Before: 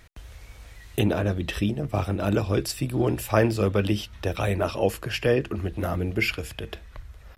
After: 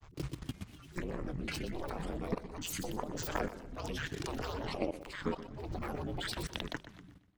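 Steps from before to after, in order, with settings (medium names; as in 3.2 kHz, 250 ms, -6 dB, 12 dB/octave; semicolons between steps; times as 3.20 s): fade out at the end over 1.86 s; ring modulator 140 Hz; hum notches 60/120/180/240/300/360 Hz; level held to a coarse grid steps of 23 dB; granulator, spray 34 ms, pitch spread up and down by 12 st; compression 6:1, threshold -51 dBFS, peak gain reduction 27.5 dB; modulated delay 122 ms, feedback 36%, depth 91 cents, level -13.5 dB; trim +16 dB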